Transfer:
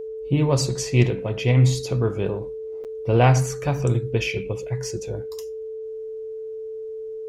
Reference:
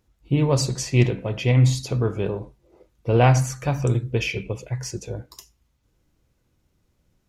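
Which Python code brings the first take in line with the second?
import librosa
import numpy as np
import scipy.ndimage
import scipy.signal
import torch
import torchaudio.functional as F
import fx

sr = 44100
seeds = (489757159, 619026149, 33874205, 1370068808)

y = fx.notch(x, sr, hz=440.0, q=30.0)
y = fx.fix_interpolate(y, sr, at_s=(2.84,), length_ms=8.1)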